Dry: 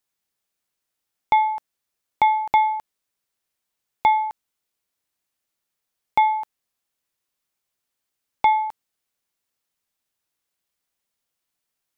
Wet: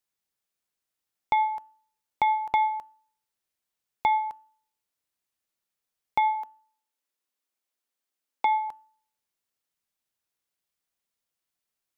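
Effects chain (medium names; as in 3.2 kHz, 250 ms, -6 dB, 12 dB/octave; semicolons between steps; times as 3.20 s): de-hum 291 Hz, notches 11; 6.35–8.69 s: elliptic high-pass 220 Hz; trim -5 dB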